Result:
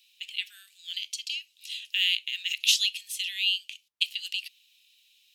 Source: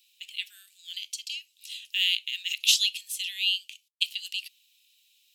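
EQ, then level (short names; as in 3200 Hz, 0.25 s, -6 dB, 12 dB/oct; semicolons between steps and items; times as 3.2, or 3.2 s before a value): notch 7600 Hz, Q 27; dynamic EQ 3500 Hz, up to -4 dB, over -33 dBFS, Q 0.95; high shelf 5300 Hz -9 dB; +5.5 dB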